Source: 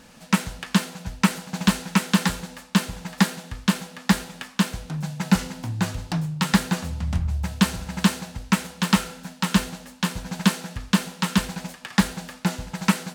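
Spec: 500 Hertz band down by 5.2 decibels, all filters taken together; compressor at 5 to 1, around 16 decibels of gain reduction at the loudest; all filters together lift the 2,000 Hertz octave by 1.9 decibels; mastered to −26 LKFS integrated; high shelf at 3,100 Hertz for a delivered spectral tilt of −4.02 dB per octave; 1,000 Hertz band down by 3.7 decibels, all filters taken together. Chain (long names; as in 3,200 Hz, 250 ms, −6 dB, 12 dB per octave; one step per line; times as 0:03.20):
parametric band 500 Hz −5.5 dB
parametric band 1,000 Hz −4.5 dB
parametric band 2,000 Hz +6.5 dB
high-shelf EQ 3,100 Hz −7 dB
downward compressor 5 to 1, threshold −32 dBFS
level +11 dB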